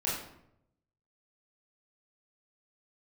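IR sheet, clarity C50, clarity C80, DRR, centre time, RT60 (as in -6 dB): 2.5 dB, 6.0 dB, -7.5 dB, 53 ms, 0.75 s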